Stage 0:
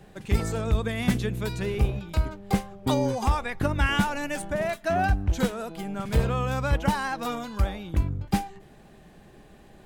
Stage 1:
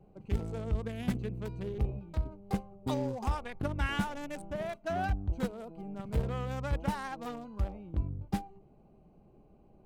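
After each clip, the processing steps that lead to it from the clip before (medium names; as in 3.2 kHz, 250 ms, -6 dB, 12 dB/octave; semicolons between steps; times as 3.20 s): local Wiener filter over 25 samples; trim -8 dB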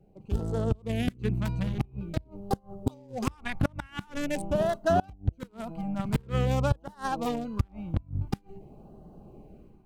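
level rider gain up to 12 dB; LFO notch sine 0.47 Hz 390–2400 Hz; inverted gate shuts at -12 dBFS, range -29 dB; trim -1 dB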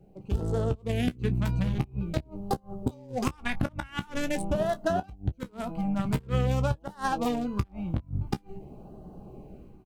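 compression, threshold -27 dBFS, peak gain reduction 9 dB; on a send: early reflections 16 ms -10.5 dB, 29 ms -17 dB; on the sum: trim +3.5 dB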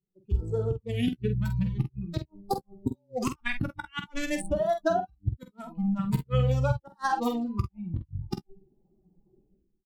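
expander on every frequency bin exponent 2; doubling 47 ms -8 dB; trim +4 dB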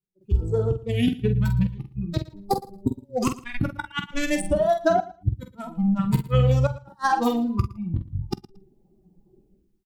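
in parallel at -9 dB: saturation -21.5 dBFS, distortion -15 dB; on the sum: trance gate "..xxxxxxxxxxxxxx" 144 bpm -12 dB; feedback delay 114 ms, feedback 16%, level -19 dB; trim +3.5 dB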